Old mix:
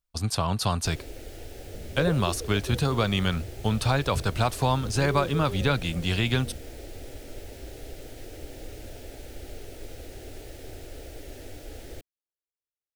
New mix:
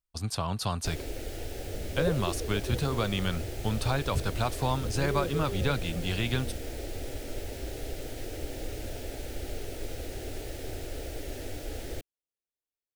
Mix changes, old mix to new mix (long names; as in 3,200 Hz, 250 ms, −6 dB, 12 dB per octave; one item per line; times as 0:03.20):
speech −5.0 dB
first sound +4.0 dB